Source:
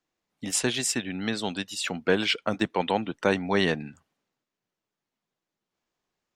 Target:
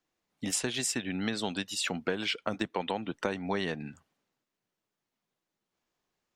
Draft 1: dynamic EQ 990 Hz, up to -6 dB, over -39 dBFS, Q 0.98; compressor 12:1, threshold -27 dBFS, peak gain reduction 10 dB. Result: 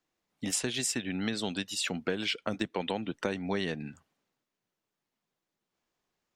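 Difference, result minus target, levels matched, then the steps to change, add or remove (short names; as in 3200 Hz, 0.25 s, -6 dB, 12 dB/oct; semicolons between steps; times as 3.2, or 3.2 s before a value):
1000 Hz band -3.0 dB
remove: dynamic EQ 990 Hz, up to -6 dB, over -39 dBFS, Q 0.98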